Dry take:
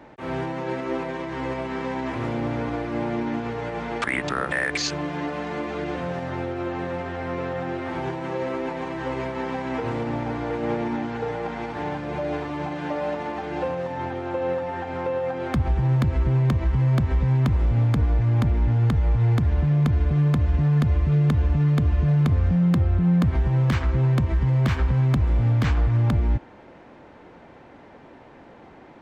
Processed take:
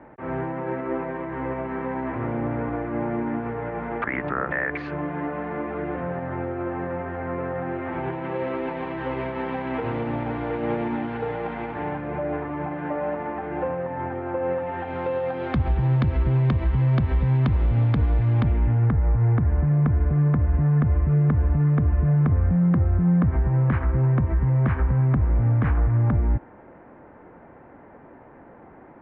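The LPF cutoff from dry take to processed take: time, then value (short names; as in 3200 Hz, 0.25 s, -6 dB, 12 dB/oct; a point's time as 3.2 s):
LPF 24 dB/oct
7.51 s 2000 Hz
8.53 s 3200 Hz
11.43 s 3200 Hz
12.25 s 2100 Hz
14.39 s 2100 Hz
15.08 s 3900 Hz
18.33 s 3900 Hz
18.96 s 1900 Hz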